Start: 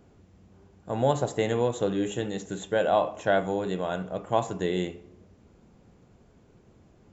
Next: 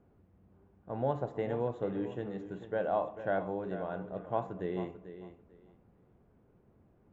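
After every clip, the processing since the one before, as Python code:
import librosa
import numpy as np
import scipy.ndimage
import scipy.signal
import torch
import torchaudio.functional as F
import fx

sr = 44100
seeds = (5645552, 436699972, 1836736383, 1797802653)

y = scipy.signal.sosfilt(scipy.signal.butter(2, 1700.0, 'lowpass', fs=sr, output='sos'), x)
y = fx.echo_feedback(y, sr, ms=443, feedback_pct=20, wet_db=-12.0)
y = F.gain(torch.from_numpy(y), -8.0).numpy()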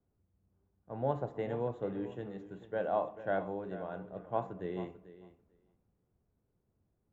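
y = fx.band_widen(x, sr, depth_pct=40)
y = F.gain(torch.from_numpy(y), -2.5).numpy()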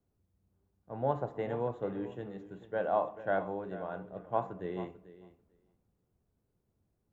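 y = fx.dynamic_eq(x, sr, hz=1100.0, q=0.87, threshold_db=-45.0, ratio=4.0, max_db=4)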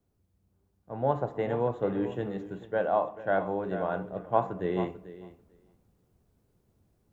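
y = fx.rider(x, sr, range_db=3, speed_s=0.5)
y = F.gain(torch.from_numpy(y), 6.0).numpy()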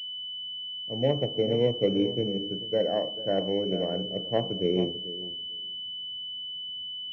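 y = fx.graphic_eq_10(x, sr, hz=(125, 250, 500, 1000), db=(8, 9, 11, -11))
y = fx.pwm(y, sr, carrier_hz=3000.0)
y = F.gain(torch.from_numpy(y), -6.0).numpy()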